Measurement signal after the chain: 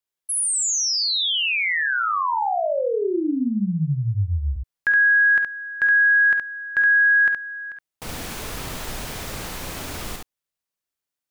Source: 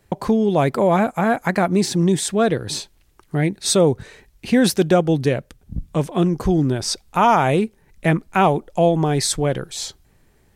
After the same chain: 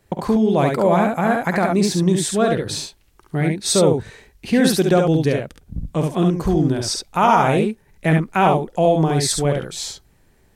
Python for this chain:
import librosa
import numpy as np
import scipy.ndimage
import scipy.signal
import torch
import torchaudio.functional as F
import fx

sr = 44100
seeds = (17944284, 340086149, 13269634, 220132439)

y = fx.room_early_taps(x, sr, ms=(50, 69), db=(-11.5, -4.0))
y = y * 10.0 ** (-1.0 / 20.0)